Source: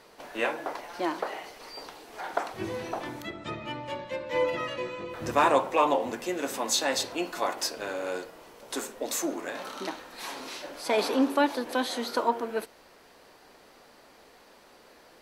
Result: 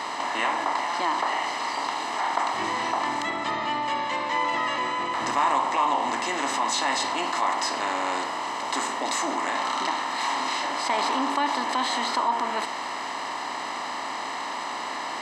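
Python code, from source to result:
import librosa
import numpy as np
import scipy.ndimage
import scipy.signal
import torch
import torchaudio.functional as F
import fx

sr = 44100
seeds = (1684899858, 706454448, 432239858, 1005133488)

p1 = fx.bin_compress(x, sr, power=0.6)
p2 = fx.highpass(p1, sr, hz=1300.0, slope=6)
p3 = fx.peak_eq(p2, sr, hz=7700.0, db=9.0, octaves=0.21)
p4 = p3 + 0.7 * np.pad(p3, (int(1.0 * sr / 1000.0), 0))[:len(p3)]
p5 = 10.0 ** (-17.5 / 20.0) * np.tanh(p4 / 10.0 ** (-17.5 / 20.0))
p6 = p4 + (p5 * 10.0 ** (-12.0 / 20.0))
p7 = fx.spacing_loss(p6, sr, db_at_10k=23)
y = fx.env_flatten(p7, sr, amount_pct=50)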